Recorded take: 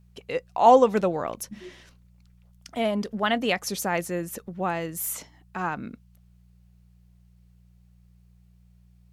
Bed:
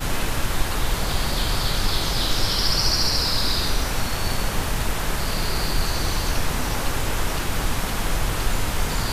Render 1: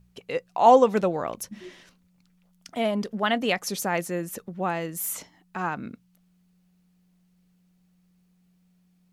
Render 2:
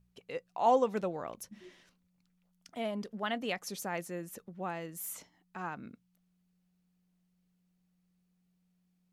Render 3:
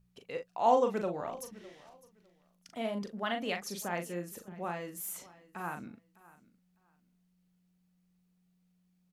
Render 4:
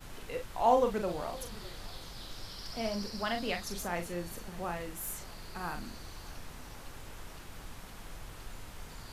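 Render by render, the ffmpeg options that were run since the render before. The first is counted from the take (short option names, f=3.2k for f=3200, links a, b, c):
-af "bandreject=f=60:t=h:w=4,bandreject=f=120:t=h:w=4"
-af "volume=-10.5dB"
-filter_complex "[0:a]asplit=2[a][b];[b]adelay=40,volume=-6.5dB[c];[a][c]amix=inputs=2:normalize=0,aecho=1:1:605|1210:0.0944|0.0189"
-filter_complex "[1:a]volume=-23dB[a];[0:a][a]amix=inputs=2:normalize=0"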